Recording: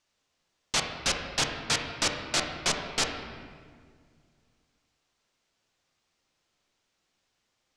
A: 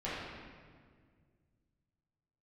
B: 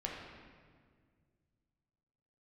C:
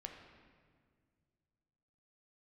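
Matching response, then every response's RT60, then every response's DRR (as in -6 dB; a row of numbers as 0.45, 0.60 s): C; 1.8, 1.9, 1.9 s; -11.0, -2.5, 2.5 dB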